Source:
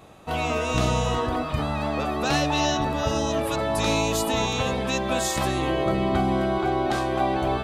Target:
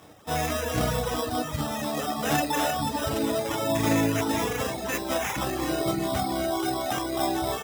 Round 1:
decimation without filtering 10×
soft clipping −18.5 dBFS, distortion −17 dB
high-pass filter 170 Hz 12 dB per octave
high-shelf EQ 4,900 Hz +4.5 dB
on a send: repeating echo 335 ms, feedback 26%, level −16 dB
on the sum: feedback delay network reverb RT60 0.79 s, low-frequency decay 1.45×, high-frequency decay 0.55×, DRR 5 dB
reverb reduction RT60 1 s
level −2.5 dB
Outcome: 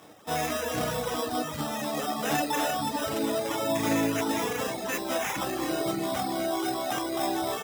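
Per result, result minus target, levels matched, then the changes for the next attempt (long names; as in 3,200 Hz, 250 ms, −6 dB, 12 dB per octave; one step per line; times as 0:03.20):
soft clipping: distortion +16 dB; 125 Hz band −5.5 dB
change: soft clipping −8.5 dBFS, distortion −32 dB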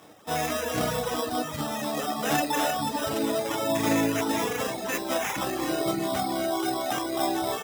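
125 Hz band −5.5 dB
change: high-pass filter 73 Hz 12 dB per octave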